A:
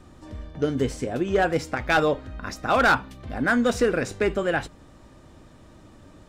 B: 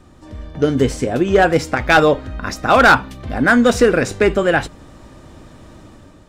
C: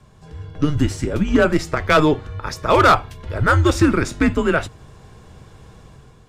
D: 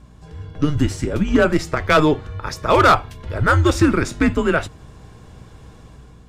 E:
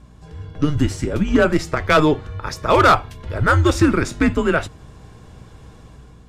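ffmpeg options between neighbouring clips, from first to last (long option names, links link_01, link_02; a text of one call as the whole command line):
ffmpeg -i in.wav -af "dynaudnorm=framelen=180:gausssize=5:maxgain=6.5dB,volume=2.5dB" out.wav
ffmpeg -i in.wav -af "afreqshift=-150,volume=-2.5dB" out.wav
ffmpeg -i in.wav -af "aeval=exprs='val(0)+0.00562*(sin(2*PI*60*n/s)+sin(2*PI*2*60*n/s)/2+sin(2*PI*3*60*n/s)/3+sin(2*PI*4*60*n/s)/4+sin(2*PI*5*60*n/s)/5)':channel_layout=same" out.wav
ffmpeg -i in.wav -ar 32000 -c:a libvorbis -b:a 128k out.ogg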